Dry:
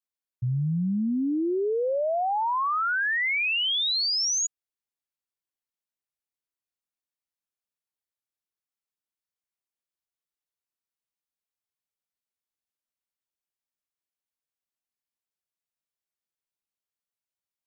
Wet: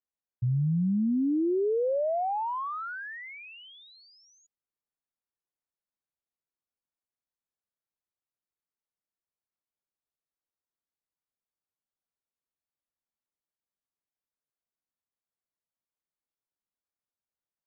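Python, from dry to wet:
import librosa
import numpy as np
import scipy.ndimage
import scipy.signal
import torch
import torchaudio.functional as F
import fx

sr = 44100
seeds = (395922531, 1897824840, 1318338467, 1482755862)

y = fx.wiener(x, sr, points=15)
y = fx.env_lowpass_down(y, sr, base_hz=820.0, full_db=-25.5)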